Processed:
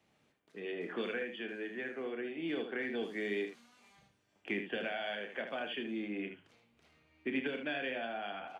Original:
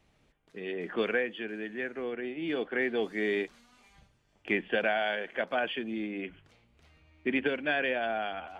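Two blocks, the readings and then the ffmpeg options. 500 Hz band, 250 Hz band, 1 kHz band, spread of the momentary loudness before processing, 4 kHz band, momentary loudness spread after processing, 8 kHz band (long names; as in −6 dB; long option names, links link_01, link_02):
−7.0 dB, −4.5 dB, −8.5 dB, 9 LU, −4.5 dB, 7 LU, can't be measured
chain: -filter_complex "[0:a]highpass=140,acrossover=split=280|3000[link_01][link_02][link_03];[link_02]acompressor=threshold=-34dB:ratio=6[link_04];[link_01][link_04][link_03]amix=inputs=3:normalize=0,asplit=2[link_05][link_06];[link_06]aecho=0:1:30|77:0.355|0.398[link_07];[link_05][link_07]amix=inputs=2:normalize=0,volume=-4dB"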